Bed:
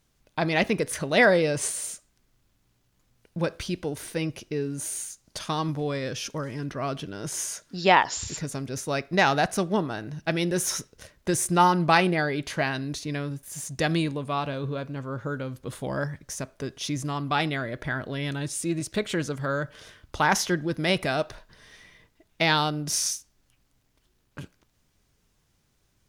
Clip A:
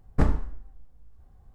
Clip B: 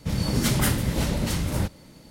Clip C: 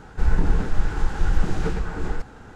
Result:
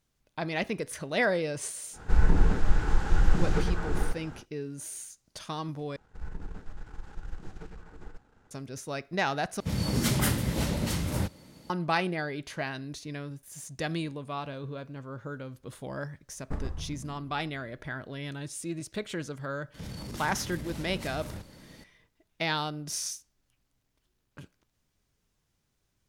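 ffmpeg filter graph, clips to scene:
ffmpeg -i bed.wav -i cue0.wav -i cue1.wav -i cue2.wav -filter_complex "[3:a]asplit=2[link_01][link_02];[2:a]asplit=2[link_03][link_04];[0:a]volume=-7.5dB[link_05];[link_02]aeval=exprs='if(lt(val(0),0),0.447*val(0),val(0))':channel_layout=same[link_06];[link_03]highpass=53[link_07];[1:a]asplit=7[link_08][link_09][link_10][link_11][link_12][link_13][link_14];[link_09]adelay=130,afreqshift=-82,volume=-5dB[link_15];[link_10]adelay=260,afreqshift=-164,volume=-11.6dB[link_16];[link_11]adelay=390,afreqshift=-246,volume=-18.1dB[link_17];[link_12]adelay=520,afreqshift=-328,volume=-24.7dB[link_18];[link_13]adelay=650,afreqshift=-410,volume=-31.2dB[link_19];[link_14]adelay=780,afreqshift=-492,volume=-37.8dB[link_20];[link_08][link_15][link_16][link_17][link_18][link_19][link_20]amix=inputs=7:normalize=0[link_21];[link_04]acompressor=threshold=-32dB:ratio=8:attack=0.16:release=34:knee=1:detection=rms[link_22];[link_05]asplit=3[link_23][link_24][link_25];[link_23]atrim=end=5.964[link_26];[link_06]atrim=end=2.55,asetpts=PTS-STARTPTS,volume=-17.5dB[link_27];[link_24]atrim=start=8.506:end=9.604[link_28];[link_07]atrim=end=2.1,asetpts=PTS-STARTPTS,volume=-3.5dB[link_29];[link_25]atrim=start=11.696[link_30];[link_01]atrim=end=2.55,asetpts=PTS-STARTPTS,volume=-2dB,afade=type=in:duration=0.1,afade=type=out:start_time=2.45:duration=0.1,adelay=1910[link_31];[link_21]atrim=end=1.54,asetpts=PTS-STARTPTS,volume=-13dB,afade=type=in:duration=0.004:curve=hsin,afade=type=out:start_time=1.536:duration=0.004:curve=hsin,adelay=16320[link_32];[link_22]atrim=end=2.1,asetpts=PTS-STARTPTS,volume=-3dB,afade=type=in:duration=0.004:curve=hsin,afade=type=out:start_time=2.096:duration=0.004:curve=hsin,adelay=19740[link_33];[link_26][link_27]acrossfade=duration=0.004:curve1=hsin:curve2=hsin[link_34];[link_34][link_28]acrossfade=duration=0.004:curve1=hsin:curve2=hsin[link_35];[link_35][link_29]acrossfade=duration=0.004:curve1=hsin:curve2=hsin[link_36];[link_36][link_30]acrossfade=duration=0.004:curve1=hsin:curve2=hsin[link_37];[link_37][link_31][link_32][link_33]amix=inputs=4:normalize=0" out.wav

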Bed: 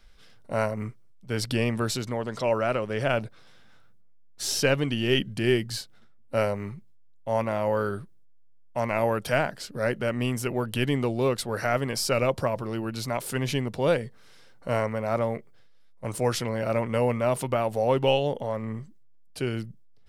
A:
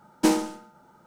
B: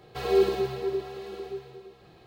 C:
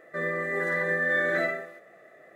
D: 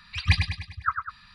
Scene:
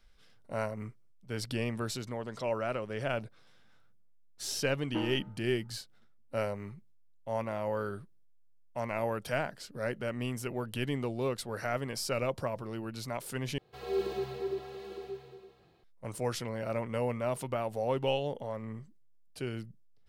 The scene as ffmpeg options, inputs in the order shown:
ffmpeg -i bed.wav -i cue0.wav -i cue1.wav -filter_complex "[0:a]volume=-8dB[link_01];[1:a]lowpass=frequency=2500:width=0.5412,lowpass=frequency=2500:width=1.3066[link_02];[2:a]dynaudnorm=framelen=190:gausssize=5:maxgain=8.5dB[link_03];[link_01]asplit=2[link_04][link_05];[link_04]atrim=end=13.584[link_06];[link_03]atrim=end=2.26,asetpts=PTS-STARTPTS,volume=-13.5dB[link_07];[link_05]atrim=start=15.836[link_08];[link_02]atrim=end=1.06,asetpts=PTS-STARTPTS,volume=-14dB,afade=type=in:duration=0.004:curve=hsin,afade=type=out:start_time=1.056:duration=0.004:curve=hsin,adelay=4710[link_09];[link_06][link_07]acrossfade=duration=0.004:curve1=hsin:curve2=hsin[link_10];[link_10][link_08]acrossfade=duration=0.004:curve1=hsin:curve2=hsin[link_11];[link_11][link_09]amix=inputs=2:normalize=0" out.wav

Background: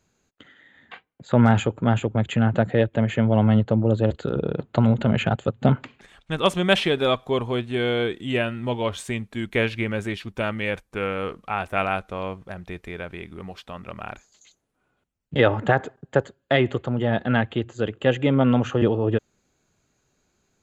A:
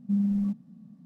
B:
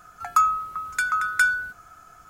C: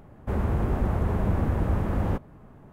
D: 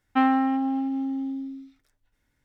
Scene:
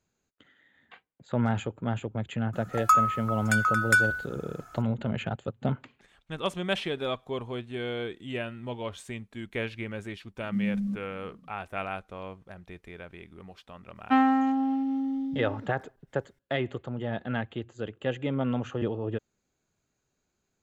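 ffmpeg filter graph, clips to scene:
ffmpeg -i bed.wav -i cue0.wav -i cue1.wav -i cue2.wav -i cue3.wav -filter_complex "[0:a]volume=-10dB[link_01];[1:a]equalizer=frequency=890:width_type=o:width=0.77:gain=-12.5[link_02];[2:a]atrim=end=2.29,asetpts=PTS-STARTPTS,volume=-1.5dB,afade=type=in:duration=0.004:curve=hsin,afade=type=out:start_time=2.286:duration=0.004:curve=hsin,adelay=2530[link_03];[link_02]atrim=end=1.05,asetpts=PTS-STARTPTS,volume=-3dB,afade=type=in:duration=0.004:curve=hsin,afade=type=out:start_time=1.046:duration=0.004:curve=hsin,adelay=10430[link_04];[4:a]atrim=end=2.44,asetpts=PTS-STARTPTS,volume=-1dB,afade=type=in:duration=0.004:curve=hsin,afade=type=out:start_time=2.436:duration=0.004:curve=hsin,adelay=13950[link_05];[link_01][link_03][link_04][link_05]amix=inputs=4:normalize=0" out.wav

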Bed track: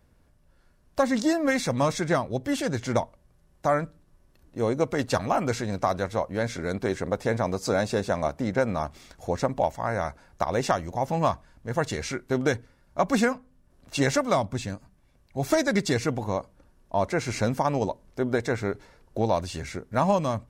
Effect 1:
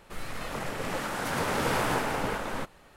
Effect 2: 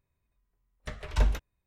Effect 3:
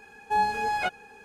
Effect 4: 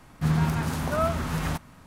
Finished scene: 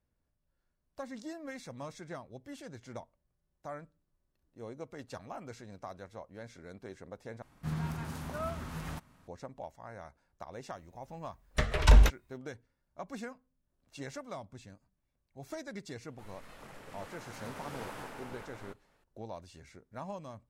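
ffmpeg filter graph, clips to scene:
ffmpeg -i bed.wav -i cue0.wav -i cue1.wav -i cue2.wav -i cue3.wav -filter_complex "[0:a]volume=-19.5dB[link_01];[2:a]alimiter=level_in=19dB:limit=-1dB:release=50:level=0:latency=1[link_02];[link_01]asplit=2[link_03][link_04];[link_03]atrim=end=7.424[link_05];[4:a]atrim=end=1.86,asetpts=PTS-STARTPTS,volume=-12dB[link_06];[link_04]atrim=start=9.276[link_07];[link_02]atrim=end=1.66,asetpts=PTS-STARTPTS,volume=-9.5dB,afade=type=in:duration=0.004:curve=hsin,afade=type=out:start_time=1.656:duration=0.004:curve=hsin,adelay=10710[link_08];[1:a]atrim=end=2.96,asetpts=PTS-STARTPTS,volume=-16.5dB,afade=type=in:duration=0.004:curve=hsin,afade=type=out:start_time=2.956:duration=0.004:curve=hsin,adelay=16080[link_09];[link_05][link_06]acrossfade=duration=0.004:curve1=hsin:curve2=hsin[link_10];[link_10][link_07]acrossfade=duration=0.004:curve1=hsin:curve2=hsin[link_11];[link_11][link_08][link_09]amix=inputs=3:normalize=0" out.wav

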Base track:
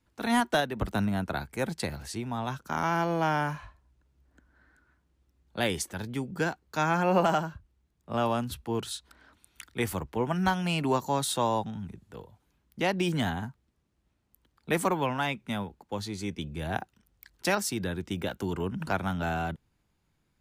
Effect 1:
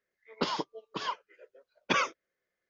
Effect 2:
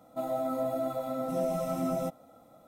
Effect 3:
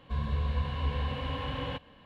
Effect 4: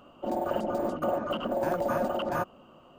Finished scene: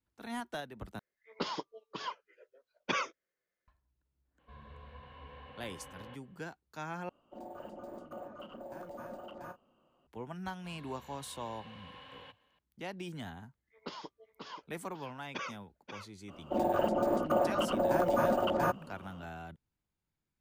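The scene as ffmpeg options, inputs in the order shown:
ffmpeg -i bed.wav -i cue0.wav -i cue1.wav -i cue2.wav -i cue3.wav -filter_complex "[1:a]asplit=2[link_01][link_02];[3:a]asplit=2[link_03][link_04];[4:a]asplit=2[link_05][link_06];[0:a]volume=-14.5dB[link_07];[link_03]bass=frequency=250:gain=-11,treble=frequency=4000:gain=-15[link_08];[link_05]asplit=2[link_09][link_10];[link_10]adelay=34,volume=-11dB[link_11];[link_09][link_11]amix=inputs=2:normalize=0[link_12];[link_04]highpass=frequency=840:poles=1[link_13];[link_02]aecho=1:1:535:0.398[link_14];[link_07]asplit=3[link_15][link_16][link_17];[link_15]atrim=end=0.994[link_18];[link_01]atrim=end=2.69,asetpts=PTS-STARTPTS,volume=-5.5dB[link_19];[link_16]atrim=start=3.676:end=7.094[link_20];[link_12]atrim=end=2.98,asetpts=PTS-STARTPTS,volume=-17dB[link_21];[link_17]atrim=start=10.066[link_22];[link_08]atrim=end=2.05,asetpts=PTS-STARTPTS,volume=-13dB,afade=type=in:duration=0.02,afade=type=out:start_time=2.03:duration=0.02,adelay=4380[link_23];[link_13]atrim=end=2.05,asetpts=PTS-STARTPTS,volume=-12dB,afade=type=in:duration=0.004:curve=hsin,afade=type=out:start_time=2.046:duration=0.004:curve=hsin,adelay=10540[link_24];[link_14]atrim=end=2.69,asetpts=PTS-STARTPTS,volume=-13dB,afade=type=in:duration=0.004:curve=hsin,afade=type=out:start_time=2.686:duration=0.004:curve=hsin,adelay=13450[link_25];[link_06]atrim=end=2.98,asetpts=PTS-STARTPTS,afade=type=in:duration=0.004:curve=hsin,afade=type=out:start_time=2.976:duration=0.004:curve=hsin,adelay=16280[link_26];[link_18][link_19]acrossfade=duration=0.004:curve1=hsin:curve2=hsin[link_27];[link_27][link_20]acrossfade=duration=0.004:curve1=hsin:curve2=hsin[link_28];[link_28][link_21]acrossfade=duration=0.004:curve1=hsin:curve2=hsin[link_29];[link_29][link_22]acrossfade=duration=0.004:curve1=hsin:curve2=hsin[link_30];[link_30][link_23][link_24][link_25][link_26]amix=inputs=5:normalize=0" out.wav

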